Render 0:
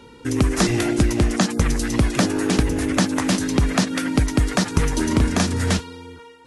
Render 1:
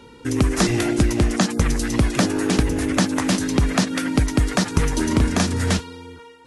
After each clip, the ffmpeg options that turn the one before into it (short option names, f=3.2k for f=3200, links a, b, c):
-af anull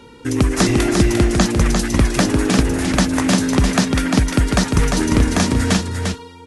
-af "aecho=1:1:349:0.596,volume=2.5dB"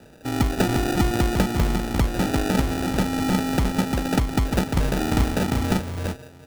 -af "acrusher=samples=41:mix=1:aa=0.000001,volume=-6dB"